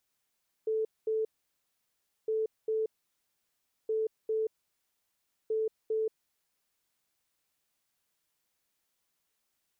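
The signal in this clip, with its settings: beep pattern sine 439 Hz, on 0.18 s, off 0.22 s, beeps 2, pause 1.03 s, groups 4, -27 dBFS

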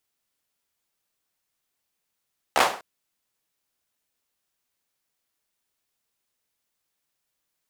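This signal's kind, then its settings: hand clap length 0.25 s, apart 14 ms, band 780 Hz, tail 0.38 s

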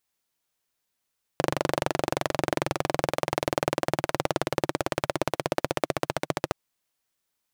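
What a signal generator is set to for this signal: single-cylinder engine model, changing speed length 5.12 s, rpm 2900, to 1700, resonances 150/340/550 Hz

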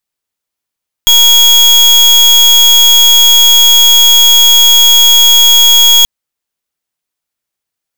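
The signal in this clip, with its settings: pulse 3320 Hz, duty 34% -4.5 dBFS 4.98 s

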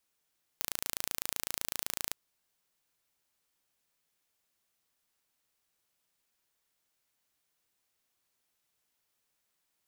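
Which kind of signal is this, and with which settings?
pulse train 27.9/s, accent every 0, -6 dBFS 1.52 s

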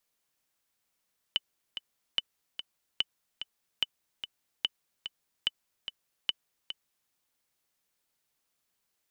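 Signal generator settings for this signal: metronome 146 bpm, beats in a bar 2, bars 7, 3000 Hz, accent 10 dB -13 dBFS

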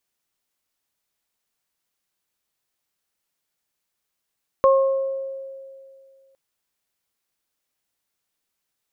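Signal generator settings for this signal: additive tone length 1.71 s, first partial 539 Hz, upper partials -4 dB, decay 2.30 s, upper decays 0.82 s, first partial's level -11.5 dB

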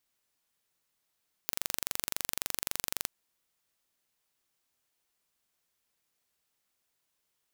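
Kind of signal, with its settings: pulse train 23.7/s, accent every 0, -4 dBFS 1.57 s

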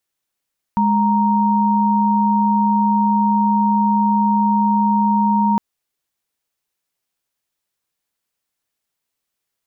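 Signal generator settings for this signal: chord G#3/A#5 sine, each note -15.5 dBFS 4.81 s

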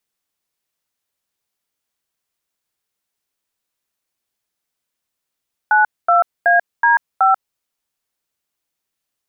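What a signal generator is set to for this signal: DTMF "92AD5", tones 0.139 s, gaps 0.235 s, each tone -12 dBFS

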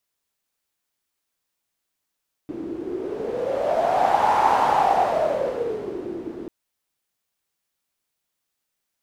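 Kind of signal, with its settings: wind-like swept noise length 3.99 s, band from 320 Hz, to 860 Hz, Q 8.3, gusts 1, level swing 15 dB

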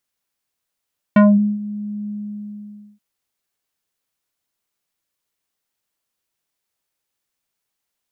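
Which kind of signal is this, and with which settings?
synth note square G#3 24 dB/oct, low-pass 230 Hz, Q 0.8, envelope 3.5 oct, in 0.22 s, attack 4.5 ms, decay 0.42 s, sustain -17 dB, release 0.91 s, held 0.92 s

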